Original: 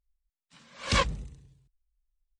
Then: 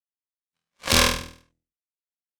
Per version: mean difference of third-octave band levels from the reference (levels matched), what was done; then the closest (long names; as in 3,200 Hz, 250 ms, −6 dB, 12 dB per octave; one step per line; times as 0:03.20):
10.5 dB: downward compressor 12 to 1, threshold −28 dBFS, peak gain reduction 9.5 dB
power curve on the samples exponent 3
on a send: flutter between parallel walls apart 4.2 metres, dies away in 0.5 s
on the sum: boost into a limiter +30.5 dB
level −1.5 dB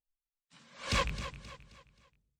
8.0 dB: loose part that buzzes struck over −29 dBFS, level −18 dBFS
noise reduction from a noise print of the clip's start 19 dB
in parallel at −4 dB: soft clipping −29.5 dBFS, distortion −5 dB
on the sum: repeating echo 265 ms, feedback 39%, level −12 dB
level −7.5 dB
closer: second